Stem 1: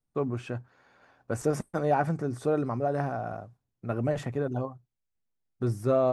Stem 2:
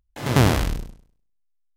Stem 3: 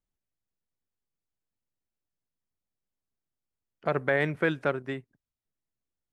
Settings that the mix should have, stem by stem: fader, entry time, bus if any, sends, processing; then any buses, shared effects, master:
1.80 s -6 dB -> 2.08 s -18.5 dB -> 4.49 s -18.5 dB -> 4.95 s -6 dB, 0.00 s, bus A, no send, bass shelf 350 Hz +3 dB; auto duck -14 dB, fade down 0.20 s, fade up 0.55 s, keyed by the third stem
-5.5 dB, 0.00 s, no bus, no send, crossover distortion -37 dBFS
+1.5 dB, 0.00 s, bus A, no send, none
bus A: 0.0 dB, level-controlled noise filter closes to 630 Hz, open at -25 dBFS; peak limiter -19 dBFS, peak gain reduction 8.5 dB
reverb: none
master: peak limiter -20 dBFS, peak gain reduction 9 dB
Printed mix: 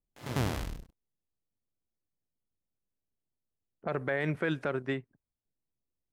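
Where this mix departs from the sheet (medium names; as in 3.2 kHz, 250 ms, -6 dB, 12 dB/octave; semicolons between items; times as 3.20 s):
stem 1: muted; stem 2 -5.5 dB -> -12.5 dB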